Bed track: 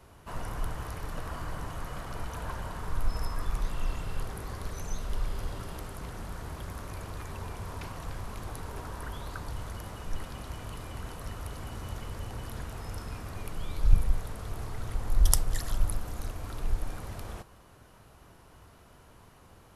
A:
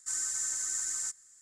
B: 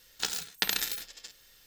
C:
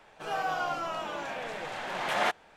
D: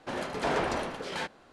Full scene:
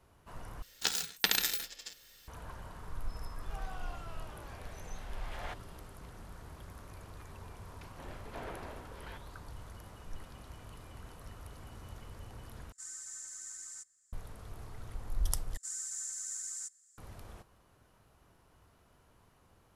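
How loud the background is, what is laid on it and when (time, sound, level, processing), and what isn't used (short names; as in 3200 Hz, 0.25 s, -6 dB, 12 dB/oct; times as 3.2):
bed track -10 dB
0.62 replace with B
3.23 add C -17 dB
7.91 add D -16 dB + LPF 3800 Hz
12.72 replace with A -12.5 dB
15.57 replace with A -13.5 dB + high shelf 3800 Hz +8 dB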